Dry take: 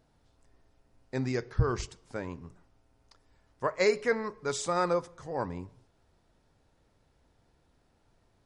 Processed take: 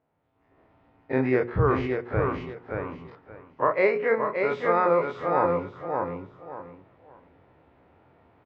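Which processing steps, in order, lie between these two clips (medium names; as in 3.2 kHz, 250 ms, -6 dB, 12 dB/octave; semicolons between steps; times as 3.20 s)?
every event in the spectrogram widened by 60 ms; cabinet simulation 120–2400 Hz, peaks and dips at 140 Hz -4 dB, 210 Hz -5 dB, 1.6 kHz -5 dB; hum notches 60/120/180/240/300/360/420/480/540 Hz; on a send: feedback delay 577 ms, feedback 23%, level -5 dB; on the sum: level rider gain up to 16.5 dB; trim -7.5 dB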